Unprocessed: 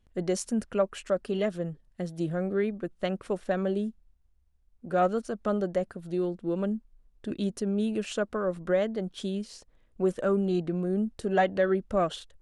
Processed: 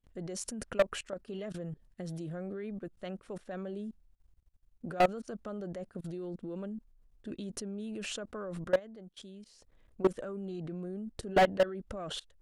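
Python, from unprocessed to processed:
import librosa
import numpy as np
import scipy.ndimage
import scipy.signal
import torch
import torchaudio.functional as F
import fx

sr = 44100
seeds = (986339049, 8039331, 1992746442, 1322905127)

y = fx.low_shelf(x, sr, hz=380.0, db=3.5, at=(11.11, 11.52))
y = fx.level_steps(y, sr, step_db=22)
y = np.clip(y, -10.0 ** (-24.0 / 20.0), 10.0 ** (-24.0 / 20.0))
y = fx.upward_expand(y, sr, threshold_db=-58.0, expansion=1.5, at=(8.78, 9.45), fade=0.02)
y = F.gain(torch.from_numpy(y), 5.0).numpy()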